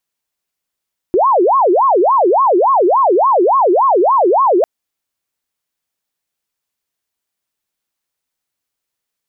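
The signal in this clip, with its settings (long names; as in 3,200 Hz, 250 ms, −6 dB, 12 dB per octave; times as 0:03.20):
siren wail 344–1,100 Hz 3.5 per second sine −8 dBFS 3.50 s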